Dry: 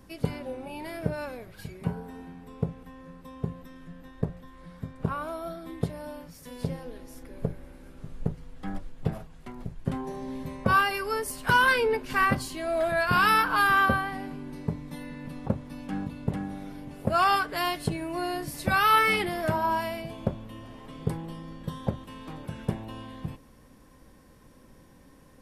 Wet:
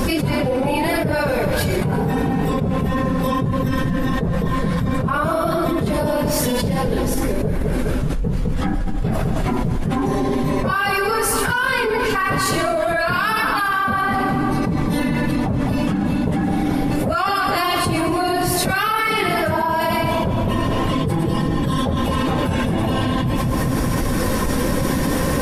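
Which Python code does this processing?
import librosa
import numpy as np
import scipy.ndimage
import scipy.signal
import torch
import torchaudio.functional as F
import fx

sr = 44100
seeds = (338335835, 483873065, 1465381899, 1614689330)

y = fx.phase_scramble(x, sr, seeds[0], window_ms=50)
y = fx.echo_split(y, sr, split_hz=1200.0, low_ms=207, high_ms=113, feedback_pct=52, wet_db=-11.0)
y = fx.env_flatten(y, sr, amount_pct=100)
y = F.gain(torch.from_numpy(y), -3.0).numpy()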